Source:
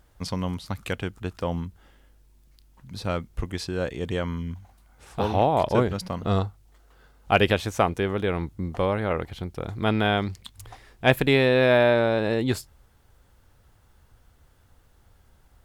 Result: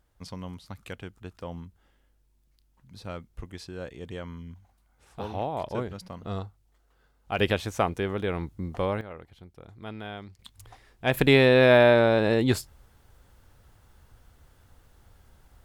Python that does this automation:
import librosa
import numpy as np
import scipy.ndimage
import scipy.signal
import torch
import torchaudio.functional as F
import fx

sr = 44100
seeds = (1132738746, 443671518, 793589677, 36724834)

y = fx.gain(x, sr, db=fx.steps((0.0, -10.0), (7.39, -3.5), (9.01, -16.0), (10.39, -6.0), (11.14, 1.5)))